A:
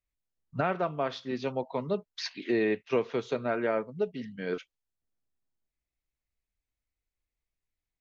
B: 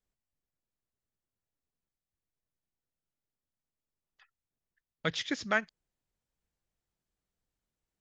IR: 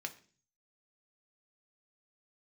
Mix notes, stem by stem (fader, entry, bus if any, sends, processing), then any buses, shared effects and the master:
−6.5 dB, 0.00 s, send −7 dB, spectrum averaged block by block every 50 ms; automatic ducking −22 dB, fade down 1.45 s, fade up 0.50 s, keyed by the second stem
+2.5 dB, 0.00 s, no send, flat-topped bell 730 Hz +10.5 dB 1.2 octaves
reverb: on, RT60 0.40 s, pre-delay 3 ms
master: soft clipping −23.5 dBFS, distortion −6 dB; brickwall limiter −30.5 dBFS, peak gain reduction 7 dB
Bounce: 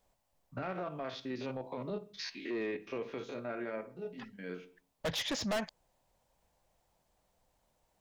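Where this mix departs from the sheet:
stem A: send −7 dB → −1 dB
stem B +2.5 dB → +11.0 dB

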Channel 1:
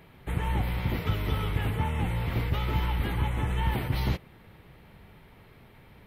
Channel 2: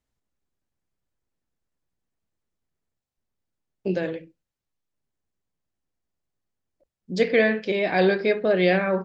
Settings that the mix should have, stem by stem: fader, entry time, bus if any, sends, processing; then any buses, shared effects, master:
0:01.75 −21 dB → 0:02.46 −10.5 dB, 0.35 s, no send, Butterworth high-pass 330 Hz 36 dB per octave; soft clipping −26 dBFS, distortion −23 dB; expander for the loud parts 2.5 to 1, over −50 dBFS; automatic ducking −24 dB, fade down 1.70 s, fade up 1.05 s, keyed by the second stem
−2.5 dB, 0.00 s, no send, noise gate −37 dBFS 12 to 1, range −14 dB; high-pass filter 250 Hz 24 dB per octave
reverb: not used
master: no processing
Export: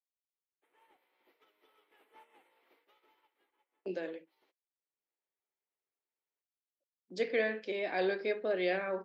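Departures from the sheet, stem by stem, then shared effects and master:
stem 1 −21.0 dB → −28.0 dB
stem 2 −2.5 dB → −11.5 dB

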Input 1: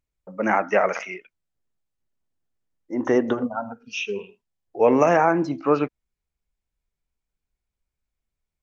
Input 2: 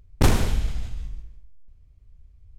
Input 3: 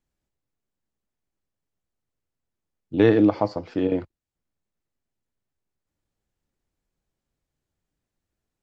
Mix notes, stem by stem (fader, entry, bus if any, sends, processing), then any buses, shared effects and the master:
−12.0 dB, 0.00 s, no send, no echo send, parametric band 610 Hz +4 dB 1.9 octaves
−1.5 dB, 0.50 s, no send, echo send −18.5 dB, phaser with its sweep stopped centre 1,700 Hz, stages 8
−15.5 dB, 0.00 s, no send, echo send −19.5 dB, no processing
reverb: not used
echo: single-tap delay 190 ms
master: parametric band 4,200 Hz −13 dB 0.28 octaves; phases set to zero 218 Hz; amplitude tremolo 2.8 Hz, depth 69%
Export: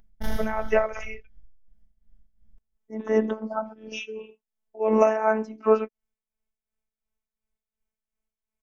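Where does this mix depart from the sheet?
stem 1 −12.0 dB → −1.0 dB
stem 2: entry 0.50 s → 0.00 s

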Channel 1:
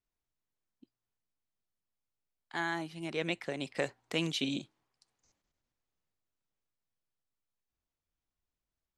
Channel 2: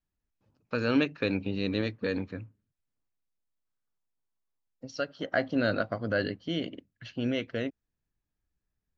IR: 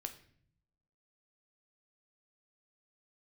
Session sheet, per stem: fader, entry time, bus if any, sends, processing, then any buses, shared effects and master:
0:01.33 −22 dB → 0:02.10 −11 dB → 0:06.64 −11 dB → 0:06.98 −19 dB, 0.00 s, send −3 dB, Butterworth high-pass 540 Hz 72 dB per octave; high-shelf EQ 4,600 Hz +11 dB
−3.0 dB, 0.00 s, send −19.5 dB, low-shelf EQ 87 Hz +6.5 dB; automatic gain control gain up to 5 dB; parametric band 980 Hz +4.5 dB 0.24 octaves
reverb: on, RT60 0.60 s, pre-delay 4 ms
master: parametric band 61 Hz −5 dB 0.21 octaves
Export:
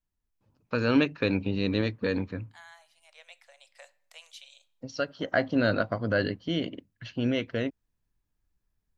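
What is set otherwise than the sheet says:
stem 1 −22.0 dB → −31.0 dB
stem 2: send off

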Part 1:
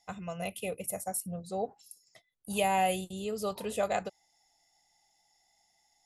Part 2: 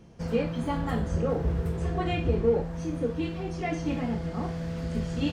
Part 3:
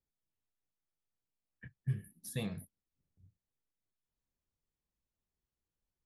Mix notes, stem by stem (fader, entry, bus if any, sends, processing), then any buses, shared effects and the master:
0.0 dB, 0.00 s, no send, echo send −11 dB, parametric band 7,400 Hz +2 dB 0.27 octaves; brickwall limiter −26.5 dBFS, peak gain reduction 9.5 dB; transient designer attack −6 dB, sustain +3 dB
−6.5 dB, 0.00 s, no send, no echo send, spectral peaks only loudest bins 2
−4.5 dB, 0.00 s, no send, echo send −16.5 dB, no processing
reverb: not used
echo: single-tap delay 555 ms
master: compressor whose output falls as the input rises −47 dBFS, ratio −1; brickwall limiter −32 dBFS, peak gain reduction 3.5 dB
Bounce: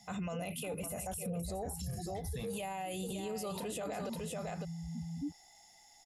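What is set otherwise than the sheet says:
stem 1 0.0 dB → +9.5 dB
stem 3 −4.5 dB → +1.5 dB
master: missing compressor whose output falls as the input rises −47 dBFS, ratio −1

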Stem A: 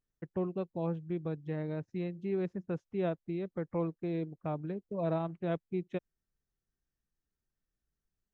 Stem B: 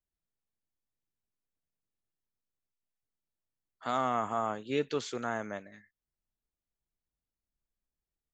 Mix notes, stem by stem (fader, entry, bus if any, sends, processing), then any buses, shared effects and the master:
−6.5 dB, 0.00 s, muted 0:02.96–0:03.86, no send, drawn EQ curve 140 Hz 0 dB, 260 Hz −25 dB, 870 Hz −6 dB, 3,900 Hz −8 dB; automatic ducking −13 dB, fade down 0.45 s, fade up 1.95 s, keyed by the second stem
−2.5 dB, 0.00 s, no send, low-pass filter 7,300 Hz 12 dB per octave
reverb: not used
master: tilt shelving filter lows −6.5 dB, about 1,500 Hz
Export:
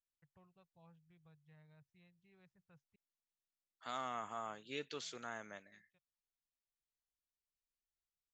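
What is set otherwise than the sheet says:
stem A −6.5 dB → −15.5 dB
stem B −2.5 dB → −9.5 dB

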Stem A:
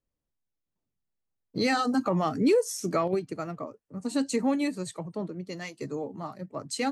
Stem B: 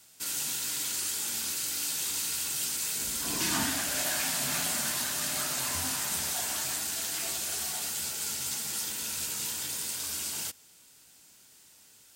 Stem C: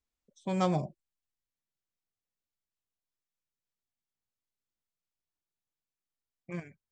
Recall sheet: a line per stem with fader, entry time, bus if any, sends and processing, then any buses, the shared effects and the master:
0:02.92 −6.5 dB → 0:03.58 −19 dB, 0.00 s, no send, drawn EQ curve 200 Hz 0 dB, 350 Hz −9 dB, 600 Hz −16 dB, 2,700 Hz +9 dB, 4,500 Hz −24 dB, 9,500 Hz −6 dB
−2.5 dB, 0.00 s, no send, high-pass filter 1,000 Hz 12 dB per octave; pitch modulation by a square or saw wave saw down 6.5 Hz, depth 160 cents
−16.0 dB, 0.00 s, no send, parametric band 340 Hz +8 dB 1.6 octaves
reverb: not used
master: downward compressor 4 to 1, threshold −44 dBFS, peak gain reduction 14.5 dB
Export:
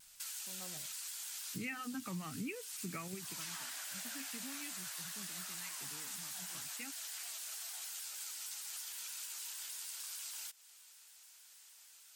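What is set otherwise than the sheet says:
stem A −6.5 dB → +5.5 dB
stem C: missing parametric band 340 Hz +8 dB 1.6 octaves

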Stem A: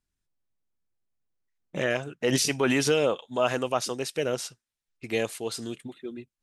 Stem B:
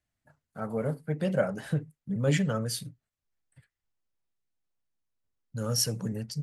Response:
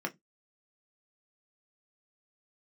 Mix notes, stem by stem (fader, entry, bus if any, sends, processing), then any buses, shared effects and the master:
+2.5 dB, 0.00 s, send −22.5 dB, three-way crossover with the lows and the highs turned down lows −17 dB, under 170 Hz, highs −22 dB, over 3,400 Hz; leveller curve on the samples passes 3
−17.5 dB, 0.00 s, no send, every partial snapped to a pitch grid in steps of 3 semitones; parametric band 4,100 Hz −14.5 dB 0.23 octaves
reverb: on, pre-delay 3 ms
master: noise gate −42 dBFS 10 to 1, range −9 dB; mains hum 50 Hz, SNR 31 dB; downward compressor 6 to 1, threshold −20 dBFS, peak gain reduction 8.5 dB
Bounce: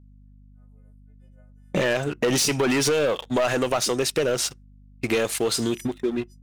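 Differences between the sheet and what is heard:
stem A: missing three-way crossover with the lows and the highs turned down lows −17 dB, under 170 Hz, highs −22 dB, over 3,400 Hz
stem B −17.5 dB → −29.0 dB

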